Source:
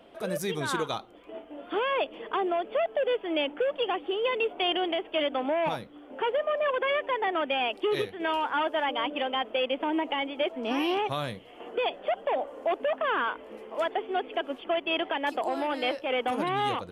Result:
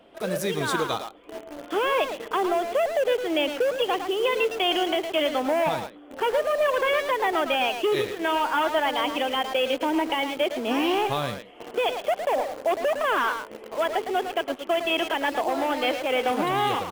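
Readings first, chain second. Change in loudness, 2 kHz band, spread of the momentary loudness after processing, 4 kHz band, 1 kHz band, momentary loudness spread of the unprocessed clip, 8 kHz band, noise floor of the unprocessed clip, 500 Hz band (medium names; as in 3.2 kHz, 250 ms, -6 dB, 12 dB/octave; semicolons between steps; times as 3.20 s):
+4.0 dB, +4.0 dB, 6 LU, +4.0 dB, +4.0 dB, 6 LU, no reading, -49 dBFS, +4.0 dB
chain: speakerphone echo 110 ms, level -6 dB; in parallel at -6 dB: word length cut 6-bit, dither none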